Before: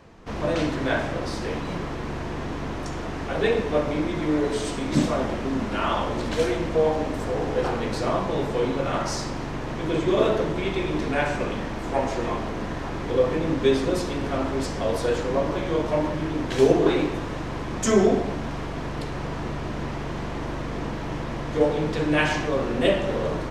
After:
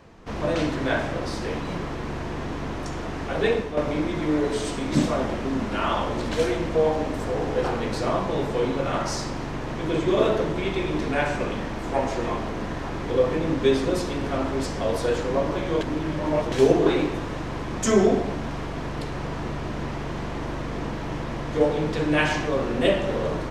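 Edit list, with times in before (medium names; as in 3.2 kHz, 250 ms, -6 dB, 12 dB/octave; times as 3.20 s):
3.52–3.77 s: fade out, to -9 dB
15.81–16.52 s: reverse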